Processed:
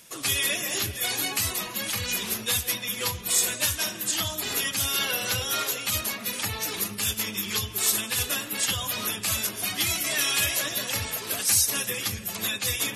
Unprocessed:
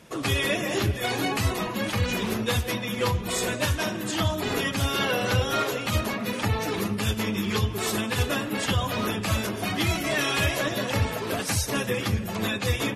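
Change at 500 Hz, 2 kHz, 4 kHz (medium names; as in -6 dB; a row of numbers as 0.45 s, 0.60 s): -9.5 dB, -1.5 dB, +3.0 dB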